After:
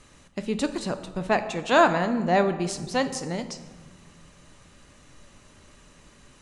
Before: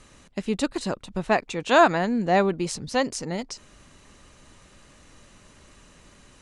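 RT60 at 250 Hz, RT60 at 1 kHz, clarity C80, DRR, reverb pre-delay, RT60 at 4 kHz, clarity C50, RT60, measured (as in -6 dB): 2.2 s, 1.5 s, 13.0 dB, 8.5 dB, 7 ms, 0.85 s, 11.5 dB, 1.4 s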